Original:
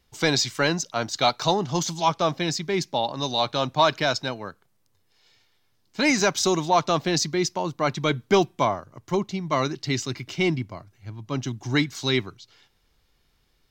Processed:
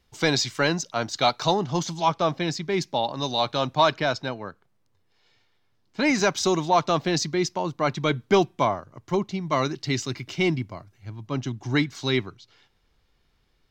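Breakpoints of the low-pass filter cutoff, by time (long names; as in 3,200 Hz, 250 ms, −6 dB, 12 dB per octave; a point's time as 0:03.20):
low-pass filter 6 dB per octave
7,000 Hz
from 0:01.64 3,700 Hz
from 0:02.72 6,600 Hz
from 0:03.92 2,600 Hz
from 0:06.15 5,300 Hz
from 0:09.41 10,000 Hz
from 0:11.27 3,900 Hz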